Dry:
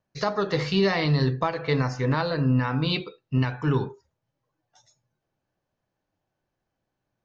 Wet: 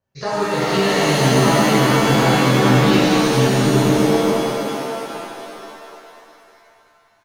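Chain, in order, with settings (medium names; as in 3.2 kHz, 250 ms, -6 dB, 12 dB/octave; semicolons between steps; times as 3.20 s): frequency-shifting echo 457 ms, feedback 44%, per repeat +64 Hz, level -6.5 dB; pitch-shifted reverb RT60 2.5 s, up +7 st, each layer -2 dB, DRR -8 dB; trim -3.5 dB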